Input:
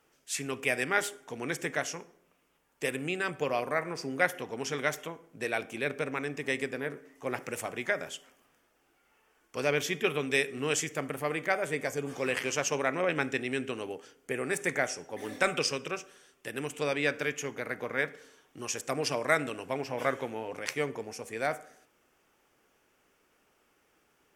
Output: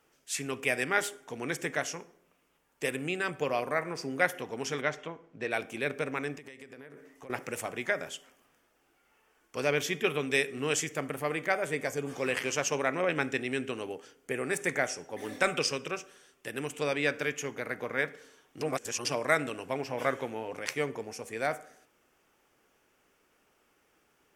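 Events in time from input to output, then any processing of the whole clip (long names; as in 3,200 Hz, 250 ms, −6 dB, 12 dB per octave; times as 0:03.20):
0:04.81–0:05.51: high-frequency loss of the air 130 metres
0:06.36–0:07.30: downward compressor 16 to 1, threshold −43 dBFS
0:18.61–0:19.05: reverse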